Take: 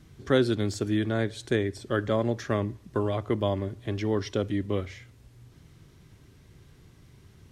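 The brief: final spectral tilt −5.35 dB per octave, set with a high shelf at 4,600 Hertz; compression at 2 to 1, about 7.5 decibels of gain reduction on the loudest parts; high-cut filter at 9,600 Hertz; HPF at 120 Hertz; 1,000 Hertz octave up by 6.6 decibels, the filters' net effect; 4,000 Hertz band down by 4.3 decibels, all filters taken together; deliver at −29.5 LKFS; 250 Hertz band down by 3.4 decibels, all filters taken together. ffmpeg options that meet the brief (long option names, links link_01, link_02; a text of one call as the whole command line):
ffmpeg -i in.wav -af "highpass=120,lowpass=9600,equalizer=frequency=250:width_type=o:gain=-5,equalizer=frequency=1000:width_type=o:gain=9,equalizer=frequency=4000:width_type=o:gain=-4,highshelf=frequency=4600:gain=-4,acompressor=threshold=-31dB:ratio=2,volume=4.5dB" out.wav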